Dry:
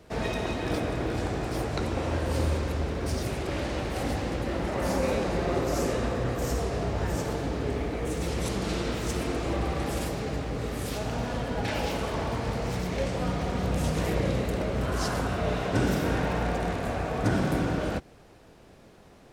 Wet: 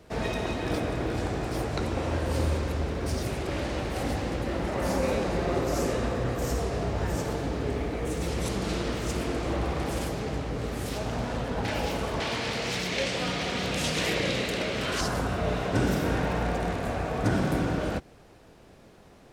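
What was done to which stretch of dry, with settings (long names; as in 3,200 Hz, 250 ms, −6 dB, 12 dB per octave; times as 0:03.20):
0:08.78–0:11.68: highs frequency-modulated by the lows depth 0.39 ms
0:12.20–0:15.01: meter weighting curve D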